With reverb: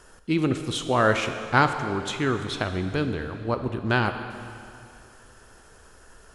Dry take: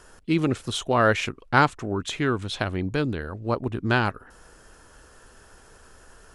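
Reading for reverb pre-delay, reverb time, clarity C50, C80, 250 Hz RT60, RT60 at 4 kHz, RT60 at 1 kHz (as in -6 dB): 7 ms, 2.6 s, 8.5 dB, 9.0 dB, 2.6 s, 2.4 s, 2.6 s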